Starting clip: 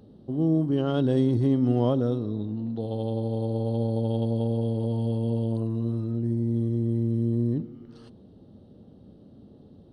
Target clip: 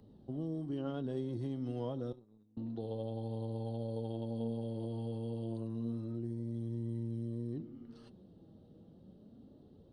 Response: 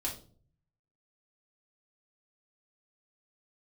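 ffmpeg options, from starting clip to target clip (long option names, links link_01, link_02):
-filter_complex "[0:a]asettb=1/sr,asplit=3[link_01][link_02][link_03];[link_01]atrim=end=2.124[link_04];[link_02]atrim=start=2.12:end=2.57,asetpts=PTS-STARTPTS,afade=type=in:duration=0.004:curve=qsin,afade=type=out:start_time=0.446:duration=0.004:curve=qsin,agate=range=-30dB:threshold=-24dB:ratio=16:detection=peak[link_05];[link_03]atrim=start=2.566[link_06];[link_04][link_05]acrossfade=duration=0.004:curve1=hsin:curve2=qsin[link_07];[link_07][link_06]acrossfade=duration=0.004:curve1=qsin:curve2=hsin,acrossover=split=95|2300[link_08][link_09][link_10];[link_08]acompressor=threshold=-47dB:ratio=4[link_11];[link_09]acompressor=threshold=-28dB:ratio=4[link_12];[link_10]acompressor=threshold=-56dB:ratio=4[link_13];[link_11][link_12][link_13]amix=inputs=3:normalize=0,flanger=delay=1:depth=5.3:regen=59:speed=0.29:shape=sinusoidal,volume=-3dB"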